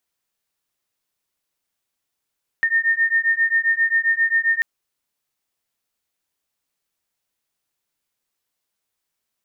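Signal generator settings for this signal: beating tones 1820 Hz, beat 7.5 Hz, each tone -19 dBFS 1.99 s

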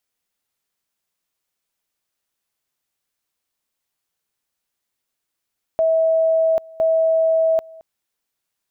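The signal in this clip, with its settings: two-level tone 648 Hz -13.5 dBFS, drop 24 dB, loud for 0.79 s, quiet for 0.22 s, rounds 2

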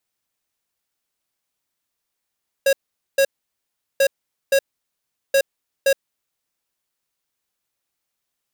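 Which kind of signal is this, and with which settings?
beep pattern square 547 Hz, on 0.07 s, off 0.45 s, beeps 2, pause 0.75 s, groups 3, -15 dBFS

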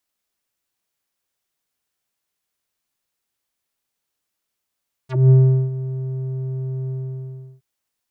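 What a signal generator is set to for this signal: synth note square C3 12 dB/oct, low-pass 270 Hz, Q 2.1, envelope 5.5 oct, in 0.07 s, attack 0.21 s, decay 0.40 s, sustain -16 dB, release 0.71 s, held 1.81 s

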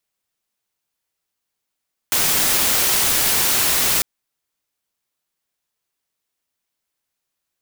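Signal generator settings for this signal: noise white, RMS -17.5 dBFS 1.90 s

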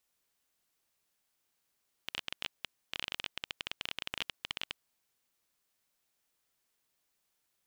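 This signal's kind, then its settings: random clicks 17/s -17.5 dBFS 2.85 s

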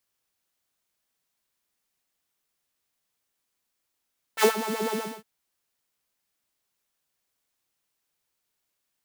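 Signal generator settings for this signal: synth patch with filter wobble A4, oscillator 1 saw, sub -7 dB, noise -8.5 dB, filter highpass, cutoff 240 Hz, Q 2.2, filter envelope 2 oct, attack 59 ms, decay 0.10 s, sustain -13 dB, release 0.28 s, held 0.58 s, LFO 8 Hz, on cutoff 1.3 oct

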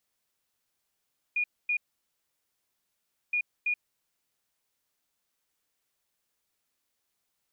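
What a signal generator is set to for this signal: beep pattern sine 2440 Hz, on 0.08 s, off 0.25 s, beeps 2, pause 1.56 s, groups 2, -24.5 dBFS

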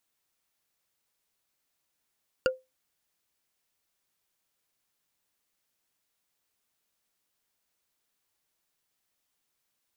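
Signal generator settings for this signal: wood hit bar, lowest mode 517 Hz, decay 0.21 s, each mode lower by 3 dB, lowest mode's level -18 dB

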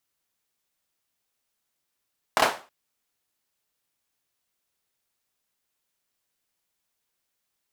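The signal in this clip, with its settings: hand clap length 0.32 s, bursts 3, apart 26 ms, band 790 Hz, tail 0.34 s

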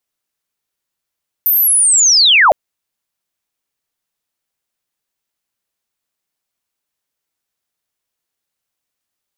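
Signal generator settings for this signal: chirp linear 14000 Hz -> 520 Hz -9.5 dBFS -> -5 dBFS 1.06 s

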